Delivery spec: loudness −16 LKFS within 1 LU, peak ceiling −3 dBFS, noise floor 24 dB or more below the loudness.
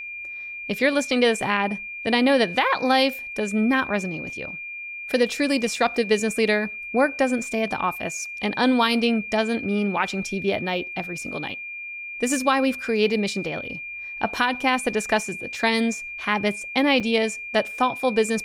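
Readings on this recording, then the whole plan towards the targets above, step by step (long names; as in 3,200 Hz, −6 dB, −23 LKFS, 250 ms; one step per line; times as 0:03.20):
number of dropouts 1; longest dropout 5.7 ms; interfering tone 2,400 Hz; level of the tone −32 dBFS; integrated loudness −23.5 LKFS; sample peak −7.5 dBFS; target loudness −16.0 LKFS
→ repair the gap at 0:17.00, 5.7 ms
notch filter 2,400 Hz, Q 30
level +7.5 dB
brickwall limiter −3 dBFS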